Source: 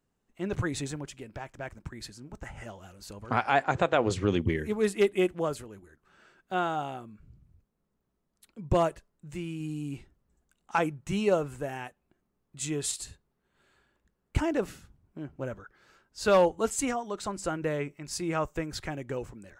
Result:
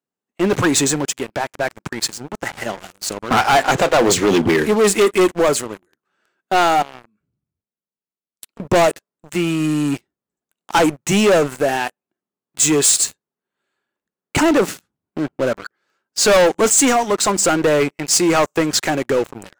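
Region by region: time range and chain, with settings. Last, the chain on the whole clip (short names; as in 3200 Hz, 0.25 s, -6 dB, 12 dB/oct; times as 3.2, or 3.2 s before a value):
6.82–8.6 compressor 10:1, threshold -48 dBFS + three-band expander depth 40%
whole clip: HPF 220 Hz 12 dB/oct; dynamic EQ 7000 Hz, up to +7 dB, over -53 dBFS, Q 1.4; sample leveller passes 5; gain +1.5 dB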